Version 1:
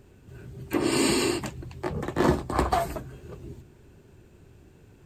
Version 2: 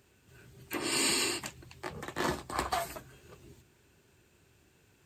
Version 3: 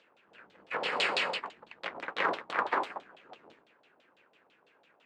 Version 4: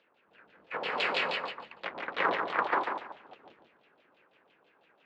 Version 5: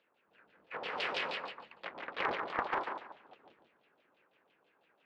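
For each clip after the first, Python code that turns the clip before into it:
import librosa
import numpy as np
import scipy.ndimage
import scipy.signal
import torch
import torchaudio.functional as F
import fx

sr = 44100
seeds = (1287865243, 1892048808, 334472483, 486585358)

y1 = scipy.signal.sosfilt(scipy.signal.butter(2, 49.0, 'highpass', fs=sr, output='sos'), x)
y1 = fx.tilt_shelf(y1, sr, db=-7.0, hz=930.0)
y1 = y1 * librosa.db_to_amplitude(-7.0)
y2 = fx.cycle_switch(y1, sr, every=2, mode='inverted')
y2 = fx.filter_lfo_lowpass(y2, sr, shape='saw_down', hz=6.0, low_hz=690.0, high_hz=3800.0, q=2.8)
y2 = scipy.signal.sosfilt(scipy.signal.butter(2, 340.0, 'highpass', fs=sr, output='sos'), y2)
y3 = fx.rider(y2, sr, range_db=10, speed_s=2.0)
y3 = fx.air_absorb(y3, sr, metres=130.0)
y3 = fx.echo_feedback(y3, sr, ms=144, feedback_pct=22, wet_db=-5.5)
y4 = fx.doppler_dist(y3, sr, depth_ms=0.43)
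y4 = y4 * librosa.db_to_amplitude(-6.0)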